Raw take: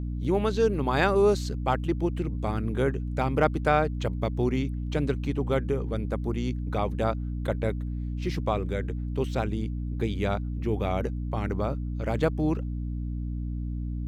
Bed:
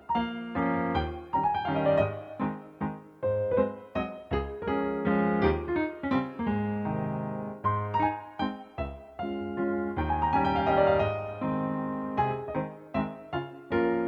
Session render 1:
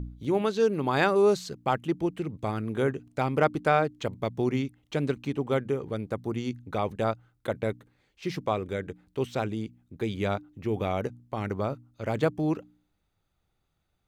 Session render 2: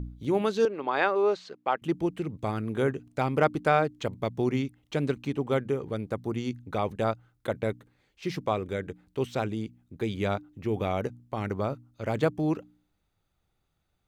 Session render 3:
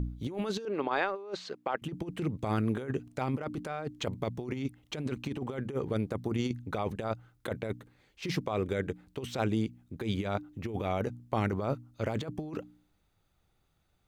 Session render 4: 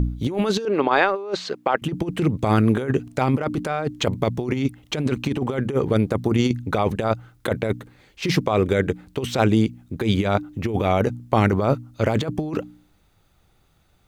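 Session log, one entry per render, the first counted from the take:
hum removal 60 Hz, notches 5
0:00.65–0:01.82: band-pass filter 420–3,100 Hz
brickwall limiter −18 dBFS, peak gain reduction 8.5 dB; compressor whose output falls as the input rises −31 dBFS, ratio −0.5
level +12 dB

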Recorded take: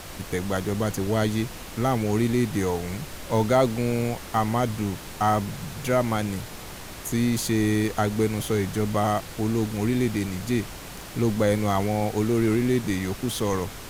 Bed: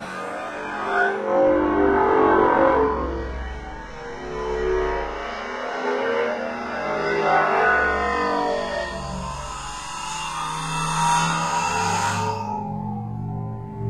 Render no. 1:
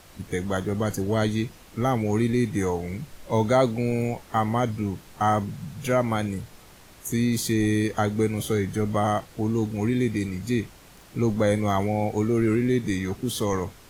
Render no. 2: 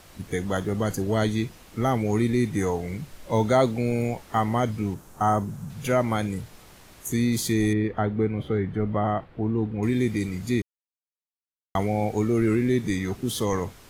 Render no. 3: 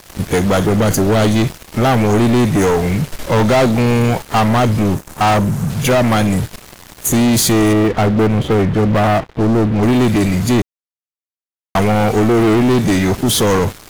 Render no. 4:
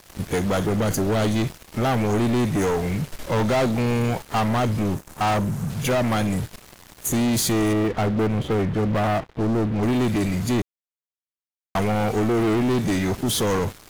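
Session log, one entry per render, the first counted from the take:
noise reduction from a noise print 11 dB
0:04.94–0:05.70: flat-topped bell 3,000 Hz −8.5 dB; 0:07.73–0:09.83: high-frequency loss of the air 470 metres; 0:10.62–0:11.75: silence
leveller curve on the samples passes 5
level −8.5 dB

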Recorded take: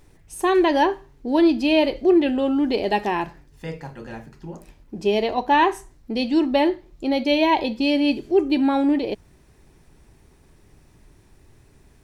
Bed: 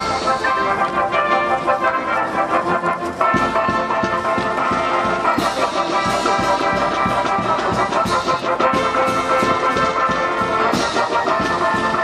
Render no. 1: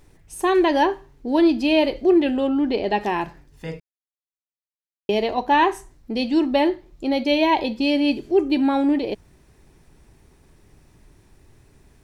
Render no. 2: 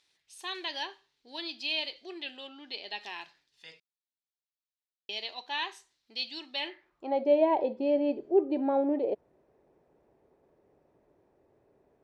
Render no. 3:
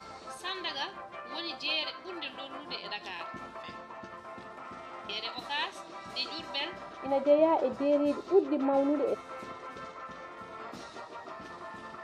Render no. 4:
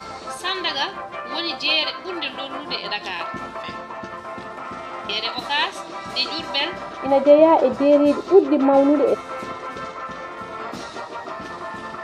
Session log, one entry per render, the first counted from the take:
0:02.47–0:03.01: high-frequency loss of the air 100 metres; 0:03.80–0:05.09: silence
band-pass filter sweep 3,900 Hz → 550 Hz, 0:06.56–0:07.24
mix in bed −26.5 dB
level +12 dB; brickwall limiter −3 dBFS, peak gain reduction 1 dB

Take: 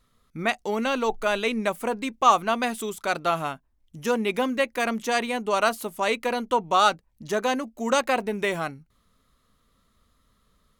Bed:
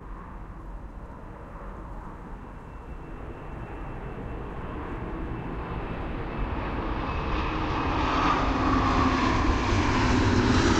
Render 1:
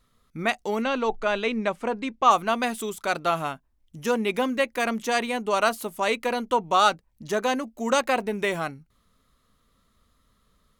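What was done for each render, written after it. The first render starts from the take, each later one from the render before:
0:00.82–0:02.31: high-frequency loss of the air 95 metres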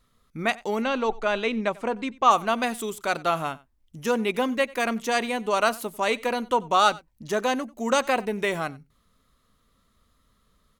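single-tap delay 92 ms −22.5 dB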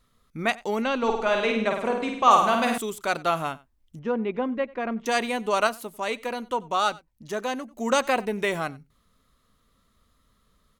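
0:00.98–0:02.78: flutter between parallel walls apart 8.8 metres, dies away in 0.71 s
0:03.99–0:05.06: head-to-tape spacing loss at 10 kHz 44 dB
0:05.67–0:07.71: clip gain −4.5 dB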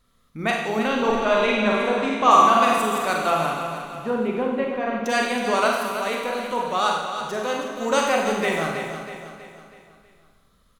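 on a send: repeating echo 322 ms, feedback 47%, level −9 dB
on the sum: four-comb reverb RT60 0.99 s, combs from 33 ms, DRR 0 dB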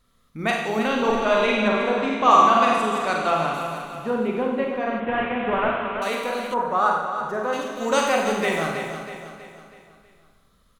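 0:01.68–0:03.54: high-frequency loss of the air 58 metres
0:05.00–0:06.02: variable-slope delta modulation 16 kbit/s
0:06.54–0:07.53: high shelf with overshoot 2,100 Hz −11.5 dB, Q 1.5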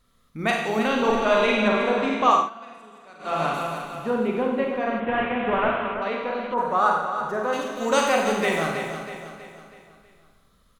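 0:02.24–0:03.45: duck −23.5 dB, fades 0.26 s
0:05.94–0:06.58: high-frequency loss of the air 320 metres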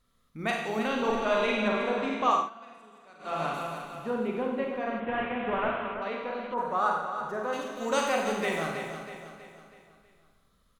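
level −6.5 dB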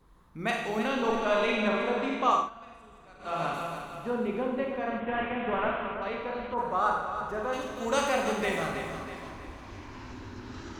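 mix in bed −20.5 dB

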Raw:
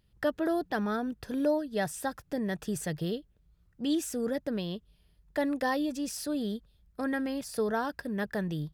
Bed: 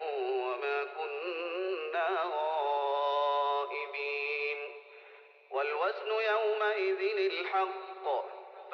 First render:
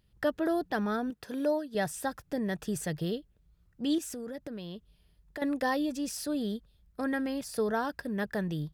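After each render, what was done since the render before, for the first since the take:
0:01.10–0:01.75: high-pass filter 290 Hz 6 dB per octave
0:03.98–0:05.42: downward compressor, threshold −36 dBFS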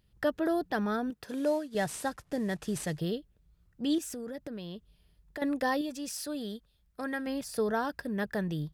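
0:01.28–0:02.99: variable-slope delta modulation 64 kbit/s
0:05.81–0:07.27: low-shelf EQ 480 Hz −7 dB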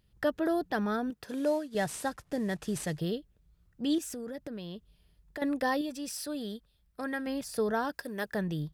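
0:05.58–0:07.38: notch filter 6,700 Hz
0:07.93–0:08.33: bass and treble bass −11 dB, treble +7 dB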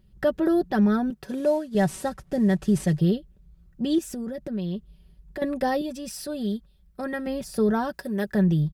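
low-shelf EQ 450 Hz +11.5 dB
comb filter 5.3 ms, depth 57%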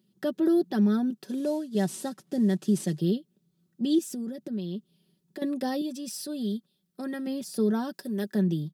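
high-pass filter 200 Hz 24 dB per octave
flat-topped bell 1,100 Hz −8.5 dB 2.7 octaves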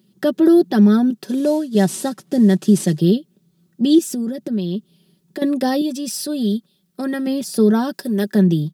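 level +11 dB

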